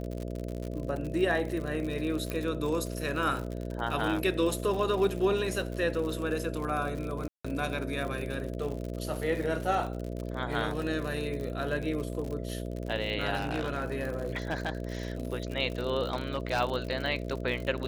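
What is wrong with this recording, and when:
mains buzz 60 Hz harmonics 11 −36 dBFS
surface crackle 67 per second −34 dBFS
0:02.30: click −19 dBFS
0:07.28–0:07.45: drop-out 165 ms
0:13.35–0:14.73: clipping −26 dBFS
0:16.12–0:16.61: clipping −23 dBFS

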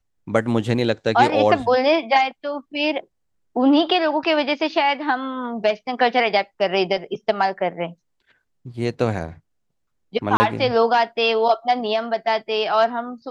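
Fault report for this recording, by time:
0:10.37–0:10.40: drop-out 30 ms

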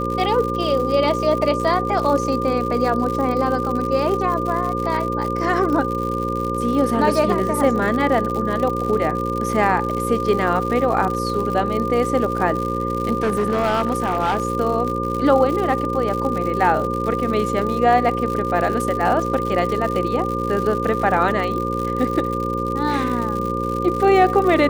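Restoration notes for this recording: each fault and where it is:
mains buzz 60 Hz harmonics 9 −25 dBFS
surface crackle 120 per second −25 dBFS
whistle 1,200 Hz −24 dBFS
0:13.18–0:14.45: clipping −15 dBFS

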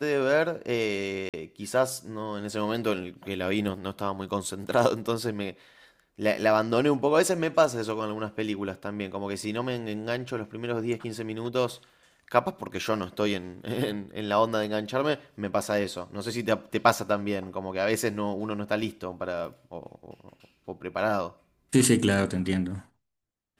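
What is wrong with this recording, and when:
0:01.29–0:01.34: drop-out 47 ms

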